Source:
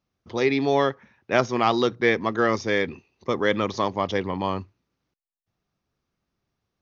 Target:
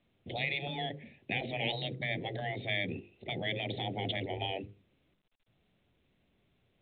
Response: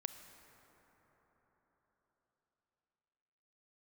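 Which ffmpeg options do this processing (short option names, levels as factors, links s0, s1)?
-filter_complex "[0:a]alimiter=limit=0.251:level=0:latency=1:release=31,asuperstop=centerf=1200:order=8:qfactor=0.93,afreqshift=13,acompressor=threshold=0.0562:ratio=8,asettb=1/sr,asplit=3[s0][s1][s2];[s0]atrim=end=2.014[s3];[s1]atrim=start=2.01:end=4.37,asetpts=PTS-STARTPTS,afade=t=in:d=0.004:c=qsin,afade=t=out:st=2.356:d=0.004:c=qsin,adynamicequalizer=threshold=0.00251:dfrequency=2600:dqfactor=2.4:tfrequency=2600:tqfactor=2.4:attack=5:release=100:ratio=0.375:range=3.5:mode=cutabove:tftype=bell[s4];[s2]atrim=start=4.366[s5];[s3][s4]acrossfade=d=0.004:c1=hsin:c2=qsin[s6];[s6][s5]acrossfade=d=0.004:c1=qsin:c2=hsin,afftfilt=real='re*lt(hypot(re,im),0.1)':imag='im*lt(hypot(re,im),0.1)':win_size=1024:overlap=0.75,bandreject=f=50:t=h:w=6,bandreject=f=100:t=h:w=6,bandreject=f=150:t=h:w=6,bandreject=f=200:t=h:w=6,bandreject=f=250:t=h:w=6,bandreject=f=300:t=h:w=6,bandreject=f=350:t=h:w=6,bandreject=f=400:t=h:w=6,bandreject=f=450:t=h:w=6,bandreject=f=500:t=h:w=6,volume=1.78" -ar 8000 -c:a pcm_mulaw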